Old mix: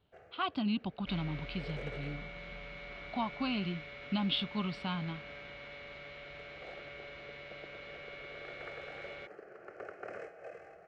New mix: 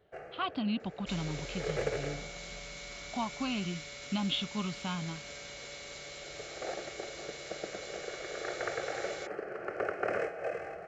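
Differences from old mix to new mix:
first sound +12.0 dB
second sound: remove low-pass filter 2,900 Hz 24 dB per octave

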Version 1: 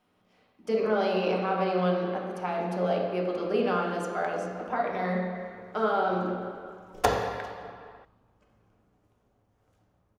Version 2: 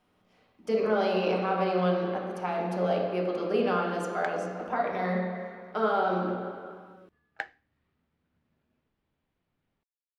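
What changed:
first sound +7.5 dB
second sound: muted

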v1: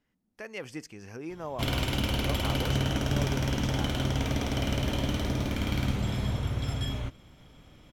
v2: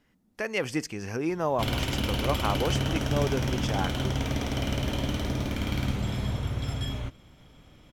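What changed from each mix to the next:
speech +10.0 dB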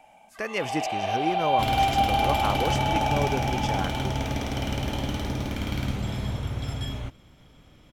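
first sound: unmuted
reverb: on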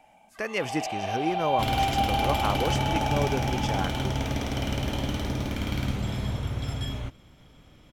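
first sound −3.5 dB

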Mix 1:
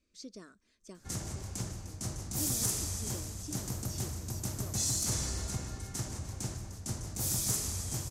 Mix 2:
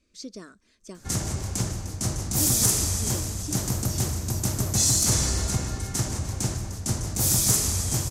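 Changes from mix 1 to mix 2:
speech +8.0 dB
background +10.5 dB

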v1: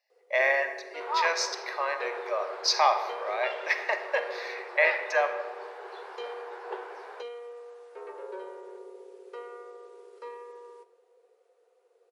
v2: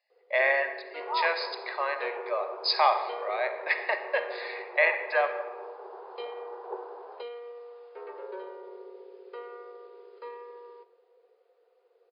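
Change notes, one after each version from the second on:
second sound: add low-pass filter 1,100 Hz 24 dB per octave
master: add linear-phase brick-wall low-pass 5,100 Hz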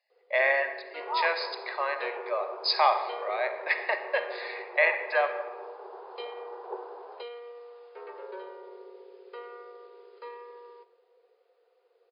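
first sound: add spectral tilt +1.5 dB per octave

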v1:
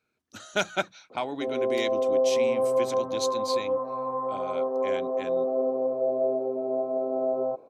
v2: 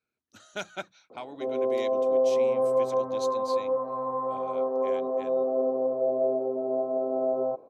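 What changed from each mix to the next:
speech −9.0 dB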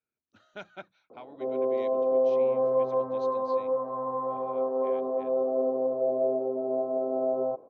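speech −5.5 dB
master: add high-frequency loss of the air 250 metres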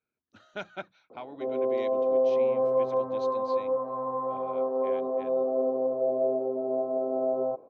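speech +5.0 dB

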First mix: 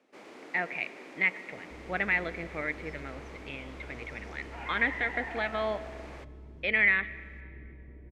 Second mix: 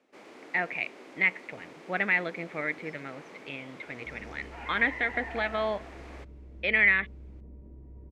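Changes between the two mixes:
speech +3.0 dB
second sound: entry +2.35 s
reverb: off

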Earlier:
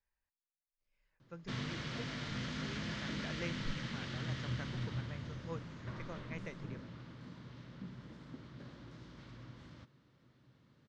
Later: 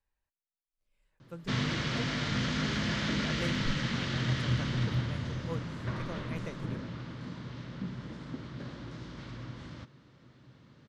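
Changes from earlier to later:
speech: remove Chebyshev low-pass with heavy ripple 6,900 Hz, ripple 6 dB
background +9.5 dB

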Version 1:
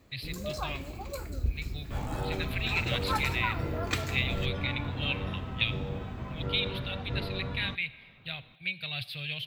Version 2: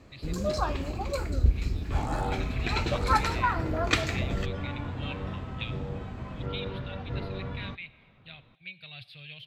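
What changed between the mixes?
speech −8.5 dB
first sound +7.5 dB
master: add high-frequency loss of the air 52 metres

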